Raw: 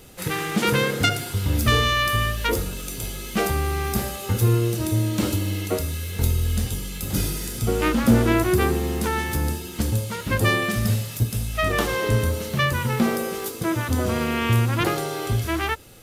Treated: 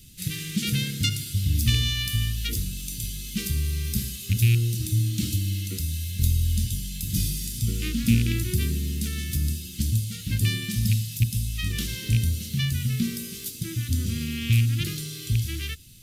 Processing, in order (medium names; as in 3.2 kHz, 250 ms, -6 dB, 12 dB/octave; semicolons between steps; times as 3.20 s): rattle on loud lows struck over -15 dBFS, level -13 dBFS; Chebyshev band-stop 170–3500 Hz, order 2